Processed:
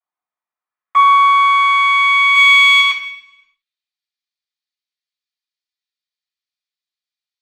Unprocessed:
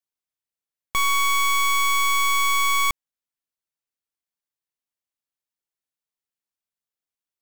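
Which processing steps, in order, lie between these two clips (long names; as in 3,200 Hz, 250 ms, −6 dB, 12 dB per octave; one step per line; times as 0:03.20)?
0:02.35–0:02.80: spectral tilt +2.5 dB per octave
band-pass filter sweep 920 Hz → 4,500 Hz, 0:00.33–0:04.05
convolution reverb RT60 0.70 s, pre-delay 3 ms, DRR −14.5 dB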